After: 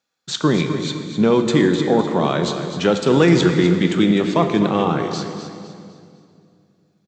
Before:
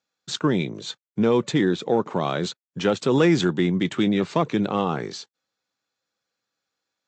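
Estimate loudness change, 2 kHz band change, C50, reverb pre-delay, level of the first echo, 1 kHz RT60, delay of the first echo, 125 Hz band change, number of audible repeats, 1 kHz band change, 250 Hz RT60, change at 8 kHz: +5.5 dB, +5.0 dB, 5.5 dB, 5 ms, -10.5 dB, 2.2 s, 254 ms, +6.0 dB, 3, +5.0 dB, 2.9 s, +5.0 dB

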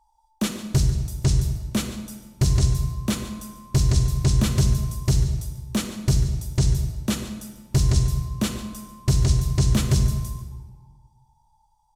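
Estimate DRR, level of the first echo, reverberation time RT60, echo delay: 6.5 dB, -15.5 dB, 1.4 s, 142 ms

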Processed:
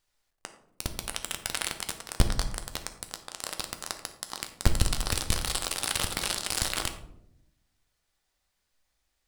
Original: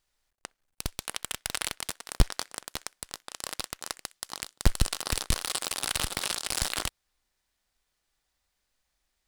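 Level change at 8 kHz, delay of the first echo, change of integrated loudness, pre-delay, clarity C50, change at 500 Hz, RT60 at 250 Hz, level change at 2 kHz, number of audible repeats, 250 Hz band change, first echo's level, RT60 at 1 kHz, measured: +0.5 dB, no echo, +0.5 dB, 10 ms, 10.5 dB, +1.5 dB, 1.2 s, +0.5 dB, no echo, +1.5 dB, no echo, 0.60 s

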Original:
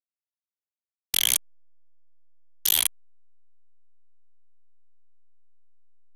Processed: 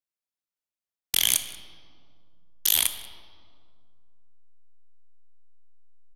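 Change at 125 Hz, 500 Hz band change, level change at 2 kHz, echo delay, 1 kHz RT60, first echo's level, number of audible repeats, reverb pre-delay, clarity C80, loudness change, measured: +1.0 dB, +1.0 dB, +0.5 dB, 186 ms, 2.0 s, -22.0 dB, 1, 21 ms, 11.0 dB, 0.0 dB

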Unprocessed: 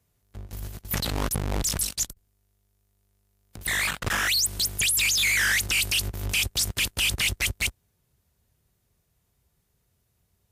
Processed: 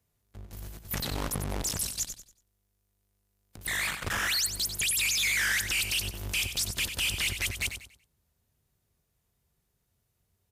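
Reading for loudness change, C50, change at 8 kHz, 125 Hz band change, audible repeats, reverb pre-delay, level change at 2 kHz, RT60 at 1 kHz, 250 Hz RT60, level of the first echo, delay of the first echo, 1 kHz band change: -4.5 dB, no reverb, -4.5 dB, -5.5 dB, 3, no reverb, -4.5 dB, no reverb, no reverb, -9.0 dB, 94 ms, -4.5 dB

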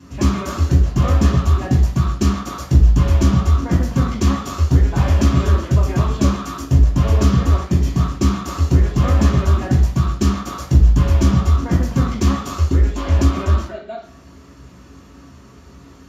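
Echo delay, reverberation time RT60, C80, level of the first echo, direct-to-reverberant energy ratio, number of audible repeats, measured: no echo, 0.55 s, 9.5 dB, no echo, -8.5 dB, no echo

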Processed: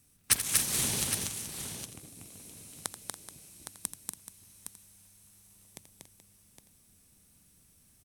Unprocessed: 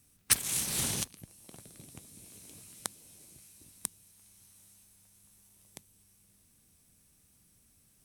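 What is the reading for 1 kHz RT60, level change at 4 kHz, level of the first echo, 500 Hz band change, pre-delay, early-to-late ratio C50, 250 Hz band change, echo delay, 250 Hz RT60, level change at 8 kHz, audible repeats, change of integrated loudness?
no reverb, +2.5 dB, -11.5 dB, +3.0 dB, no reverb, no reverb, +2.5 dB, 83 ms, no reverb, +2.5 dB, 6, +0.5 dB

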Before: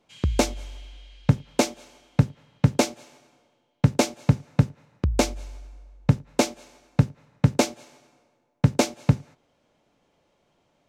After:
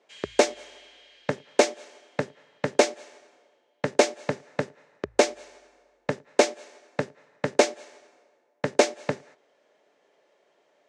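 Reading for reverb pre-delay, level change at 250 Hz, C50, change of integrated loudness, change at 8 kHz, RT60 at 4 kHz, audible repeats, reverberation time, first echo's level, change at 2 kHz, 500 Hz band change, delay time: no reverb, -7.5 dB, no reverb, -1.5 dB, -0.5 dB, no reverb, no echo, no reverb, no echo, +3.5 dB, +5.0 dB, no echo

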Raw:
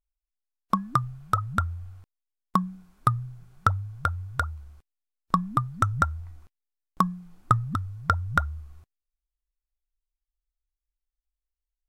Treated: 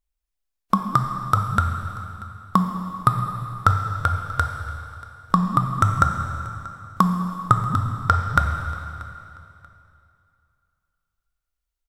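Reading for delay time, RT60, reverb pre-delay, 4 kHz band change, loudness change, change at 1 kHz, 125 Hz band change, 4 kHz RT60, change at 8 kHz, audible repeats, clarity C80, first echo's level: 635 ms, 2.8 s, 5 ms, +6.0 dB, +5.0 dB, +6.0 dB, +6.0 dB, 2.6 s, +6.0 dB, 2, 6.0 dB, -20.5 dB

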